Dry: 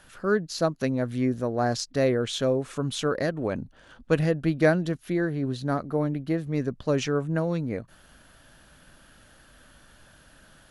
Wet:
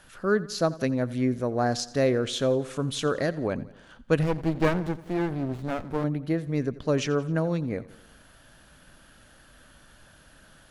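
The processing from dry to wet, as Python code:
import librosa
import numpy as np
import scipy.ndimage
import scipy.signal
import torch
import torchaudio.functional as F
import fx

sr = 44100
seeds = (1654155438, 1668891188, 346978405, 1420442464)

y = fx.echo_feedback(x, sr, ms=87, feedback_pct=55, wet_db=-19.0)
y = fx.running_max(y, sr, window=33, at=(4.23, 6.04))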